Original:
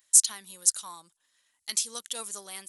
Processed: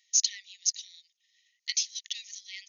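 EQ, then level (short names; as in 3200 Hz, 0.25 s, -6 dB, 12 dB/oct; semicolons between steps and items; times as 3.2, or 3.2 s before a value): brick-wall FIR band-pass 1800–6800 Hz; dynamic EQ 3300 Hz, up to -3 dB, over -50 dBFS, Q 6.1; +3.5 dB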